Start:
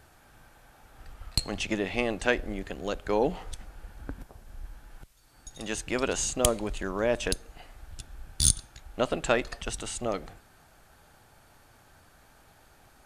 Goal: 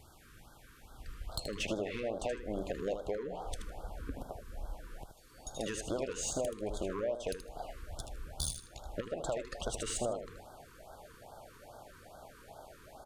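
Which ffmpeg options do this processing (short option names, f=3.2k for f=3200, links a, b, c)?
-af "asetnsamples=n=441:p=0,asendcmd='1.29 equalizer g 13',equalizer=f=630:t=o:w=1.2:g=-3.5,alimiter=limit=-9.5dB:level=0:latency=1:release=388,acompressor=threshold=-29dB:ratio=20,asoftclip=type=tanh:threshold=-26dB,aecho=1:1:78|156|234:0.376|0.0789|0.0166,afftfilt=real='re*(1-between(b*sr/1024,660*pow(2300/660,0.5+0.5*sin(2*PI*2.4*pts/sr))/1.41,660*pow(2300/660,0.5+0.5*sin(2*PI*2.4*pts/sr))*1.41))':imag='im*(1-between(b*sr/1024,660*pow(2300/660,0.5+0.5*sin(2*PI*2.4*pts/sr))/1.41,660*pow(2300/660,0.5+0.5*sin(2*PI*2.4*pts/sr))*1.41))':win_size=1024:overlap=0.75"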